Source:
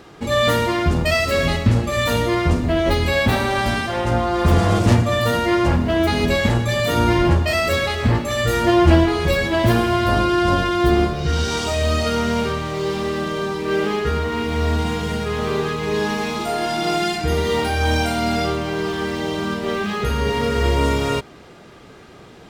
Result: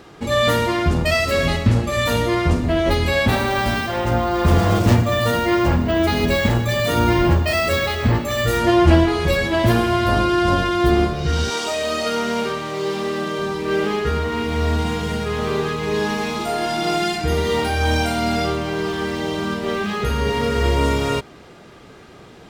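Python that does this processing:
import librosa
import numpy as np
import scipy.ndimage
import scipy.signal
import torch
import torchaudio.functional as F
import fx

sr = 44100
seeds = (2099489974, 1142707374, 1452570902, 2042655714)

y = fx.resample_bad(x, sr, factor=2, down='none', up='hold', at=(3.33, 8.58))
y = fx.highpass(y, sr, hz=fx.line((11.49, 330.0), (13.38, 150.0)), slope=12, at=(11.49, 13.38), fade=0.02)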